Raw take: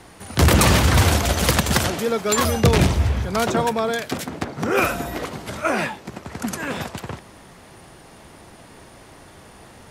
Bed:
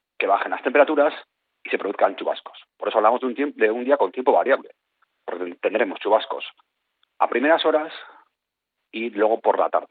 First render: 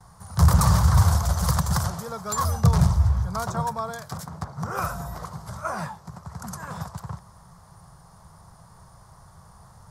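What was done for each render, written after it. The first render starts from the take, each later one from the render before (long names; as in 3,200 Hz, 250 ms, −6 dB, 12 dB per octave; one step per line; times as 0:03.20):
noise gate with hold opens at −39 dBFS
drawn EQ curve 170 Hz 0 dB, 270 Hz −24 dB, 1,100 Hz −1 dB, 2,600 Hz −25 dB, 5,000 Hz −7 dB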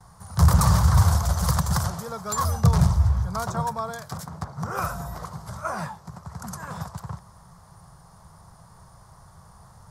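no processing that can be heard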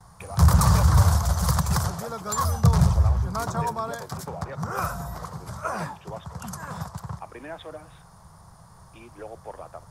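mix in bed −21 dB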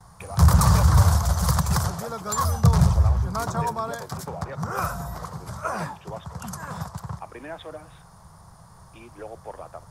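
level +1 dB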